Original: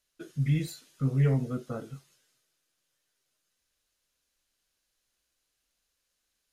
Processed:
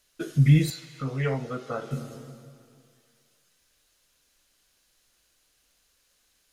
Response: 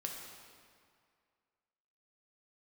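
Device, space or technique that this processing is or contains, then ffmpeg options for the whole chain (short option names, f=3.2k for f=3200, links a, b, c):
compressed reverb return: -filter_complex "[0:a]asplit=2[a][b];[1:a]atrim=start_sample=2205[c];[b][c]afir=irnorm=-1:irlink=0,acompressor=threshold=-35dB:ratio=6,volume=-3dB[d];[a][d]amix=inputs=2:normalize=0,asettb=1/sr,asplit=3[e][f][g];[e]atrim=end=0.704[h];[f]atrim=start=0.7:end=1.91,asetpts=PTS-STARTPTS,afade=t=in:d=0.004:c=qsin,afade=t=out:st=1.206:d=0.004:c=qsin,acrossover=split=510 6100:gain=0.2 1 0.224[i][j][k];[i][j][k]amix=inputs=3:normalize=0[l];[g]atrim=start=1.906[m];[h][l]acrossfade=d=0.004:c1=hsin:c2=qsin[n];[n][m]acrossfade=d=0.004:c1=qsin:c2=hsin,volume=7.5dB"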